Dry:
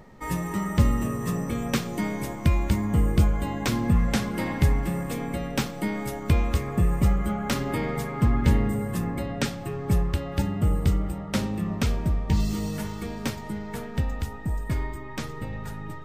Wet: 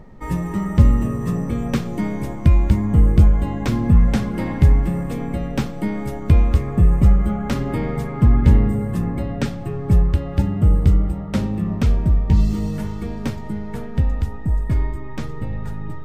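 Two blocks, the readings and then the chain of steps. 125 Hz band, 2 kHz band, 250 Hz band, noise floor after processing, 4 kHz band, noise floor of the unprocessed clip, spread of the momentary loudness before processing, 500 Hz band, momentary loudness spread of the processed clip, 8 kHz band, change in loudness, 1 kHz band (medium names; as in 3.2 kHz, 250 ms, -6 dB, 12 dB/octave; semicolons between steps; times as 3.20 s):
+8.0 dB, -1.0 dB, +5.5 dB, -29 dBFS, -3.0 dB, -37 dBFS, 9 LU, +3.0 dB, 12 LU, no reading, +7.0 dB, +1.0 dB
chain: tilt EQ -2 dB/octave; trim +1 dB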